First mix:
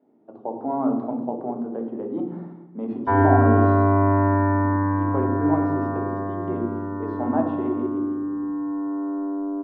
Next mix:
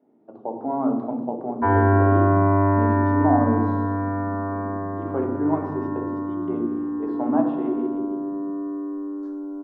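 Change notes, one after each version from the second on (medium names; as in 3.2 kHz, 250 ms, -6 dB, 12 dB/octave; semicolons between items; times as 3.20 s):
background: entry -1.45 s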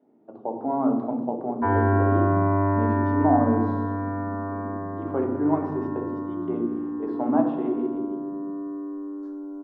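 background -3.5 dB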